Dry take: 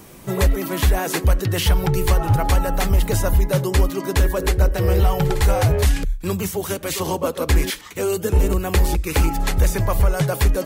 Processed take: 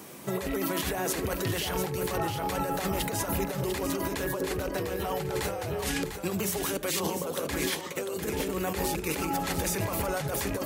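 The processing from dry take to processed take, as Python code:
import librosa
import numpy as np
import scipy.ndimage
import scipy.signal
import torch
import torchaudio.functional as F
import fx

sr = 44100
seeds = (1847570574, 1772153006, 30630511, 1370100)

p1 = fx.rattle_buzz(x, sr, strikes_db=-15.0, level_db=-29.0)
p2 = scipy.signal.sosfilt(scipy.signal.butter(2, 170.0, 'highpass', fs=sr, output='sos'), p1)
p3 = fx.hum_notches(p2, sr, base_hz=60, count=7)
p4 = fx.over_compress(p3, sr, threshold_db=-27.0, ratio=-1.0)
p5 = p4 + fx.echo_single(p4, sr, ms=698, db=-7.5, dry=0)
y = p5 * 10.0 ** (-4.0 / 20.0)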